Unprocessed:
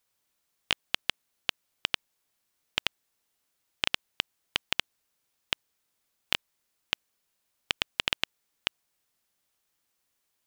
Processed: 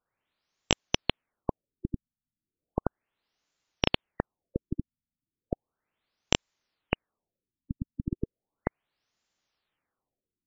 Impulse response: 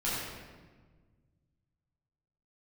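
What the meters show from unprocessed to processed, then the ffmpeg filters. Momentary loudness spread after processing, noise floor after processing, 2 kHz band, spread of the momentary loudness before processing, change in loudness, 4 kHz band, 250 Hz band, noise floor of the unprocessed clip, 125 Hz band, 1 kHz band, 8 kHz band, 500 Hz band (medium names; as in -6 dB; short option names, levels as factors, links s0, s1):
10 LU, under -85 dBFS, -5.0 dB, 6 LU, -1.5 dB, -4.5 dB, +15.0 dB, -78 dBFS, +16.0 dB, +2.5 dB, +3.5 dB, +10.5 dB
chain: -af "aeval=exprs='0.631*(cos(1*acos(clip(val(0)/0.631,-1,1)))-cos(1*PI/2))+0.0398*(cos(5*acos(clip(val(0)/0.631,-1,1)))-cos(5*PI/2))+0.316*(cos(6*acos(clip(val(0)/0.631,-1,1)))-cos(6*PI/2))':c=same,afftfilt=real='re*lt(b*sr/1024,260*pow(7600/260,0.5+0.5*sin(2*PI*0.35*pts/sr)))':imag='im*lt(b*sr/1024,260*pow(7600/260,0.5+0.5*sin(2*PI*0.35*pts/sr)))':win_size=1024:overlap=0.75,volume=0.841"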